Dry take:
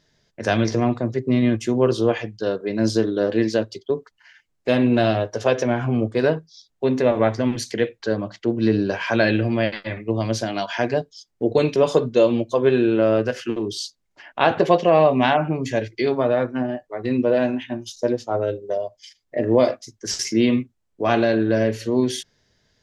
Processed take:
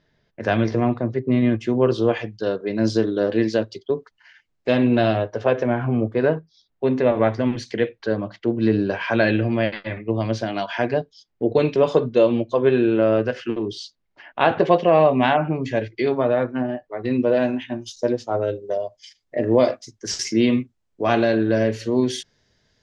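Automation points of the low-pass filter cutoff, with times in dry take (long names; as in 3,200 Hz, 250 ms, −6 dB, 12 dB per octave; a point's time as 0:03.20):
0:01.51 2,900 Hz
0:02.21 5,400 Hz
0:04.87 5,400 Hz
0:05.51 2,300 Hz
0:06.37 2,300 Hz
0:07.25 3,700 Hz
0:16.83 3,700 Hz
0:17.36 7,800 Hz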